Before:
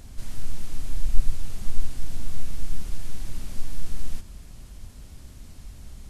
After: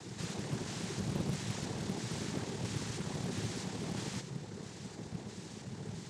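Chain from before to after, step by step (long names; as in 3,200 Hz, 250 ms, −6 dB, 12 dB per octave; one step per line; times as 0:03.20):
pitch shifter gated in a rhythm +9.5 semitones, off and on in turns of 330 ms
cochlear-implant simulation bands 6
highs frequency-modulated by the lows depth 0.59 ms
level +6 dB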